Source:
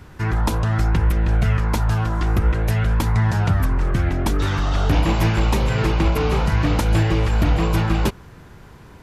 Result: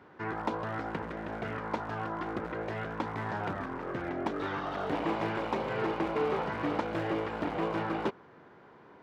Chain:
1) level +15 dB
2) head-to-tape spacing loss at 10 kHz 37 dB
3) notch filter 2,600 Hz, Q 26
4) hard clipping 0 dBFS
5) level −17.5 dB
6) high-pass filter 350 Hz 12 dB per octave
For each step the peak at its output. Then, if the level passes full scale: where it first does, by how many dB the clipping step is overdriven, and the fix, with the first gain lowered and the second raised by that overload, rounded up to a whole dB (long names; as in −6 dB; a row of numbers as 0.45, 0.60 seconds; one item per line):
+9.0, +7.5, +7.5, 0.0, −17.5, −16.5 dBFS
step 1, 7.5 dB
step 1 +7 dB, step 5 −9.5 dB